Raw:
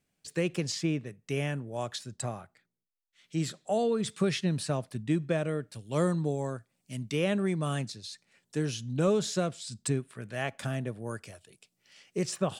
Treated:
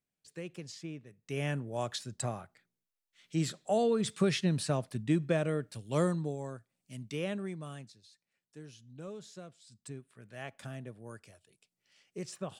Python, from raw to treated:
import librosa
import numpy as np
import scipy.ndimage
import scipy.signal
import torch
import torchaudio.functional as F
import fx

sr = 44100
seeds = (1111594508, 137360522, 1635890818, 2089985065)

y = fx.gain(x, sr, db=fx.line((1.07, -13.0), (1.5, -0.5), (5.94, -0.5), (6.37, -7.0), (7.26, -7.0), (8.11, -18.5), (9.6, -18.5), (10.45, -10.0)))